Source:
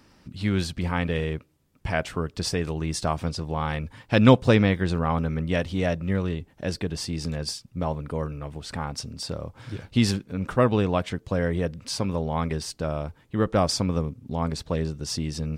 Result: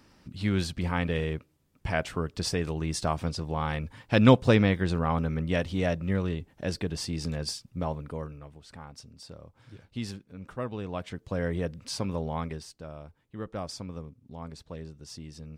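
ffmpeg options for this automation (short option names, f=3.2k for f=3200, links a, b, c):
-af "volume=7dB,afade=t=out:st=7.7:d=0.88:silence=0.266073,afade=t=in:st=10.78:d=0.7:silence=0.334965,afade=t=out:st=12.28:d=0.44:silence=0.334965"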